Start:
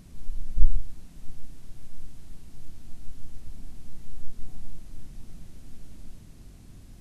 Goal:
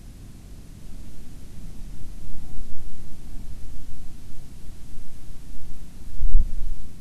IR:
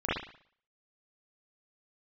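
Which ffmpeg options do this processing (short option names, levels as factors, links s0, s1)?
-filter_complex "[0:a]areverse,acontrast=28,asplit=2[s0][s1];[1:a]atrim=start_sample=2205[s2];[s1][s2]afir=irnorm=-1:irlink=0,volume=0.0891[s3];[s0][s3]amix=inputs=2:normalize=0"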